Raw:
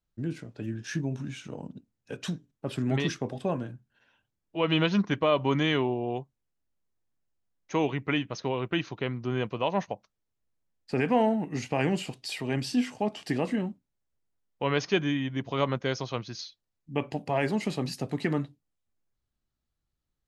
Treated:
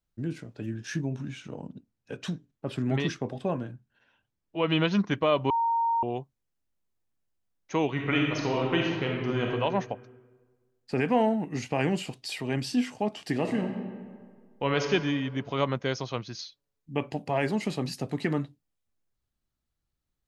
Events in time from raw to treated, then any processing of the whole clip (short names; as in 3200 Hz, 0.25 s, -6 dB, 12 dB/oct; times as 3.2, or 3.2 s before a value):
1.06–4.91 high shelf 7600 Hz -9 dB
5.5–6.03 bleep 924 Hz -22.5 dBFS
7.9–9.45 reverb throw, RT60 1.5 s, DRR -1.5 dB
13.32–14.91 reverb throw, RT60 1.8 s, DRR 4.5 dB